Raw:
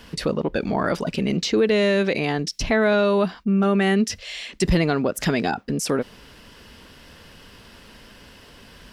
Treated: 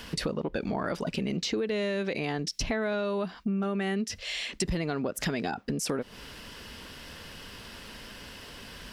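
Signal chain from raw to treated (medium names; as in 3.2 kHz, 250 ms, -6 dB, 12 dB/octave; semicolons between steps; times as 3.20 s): compression 5:1, threshold -28 dBFS, peak gain reduction 12.5 dB; tape noise reduction on one side only encoder only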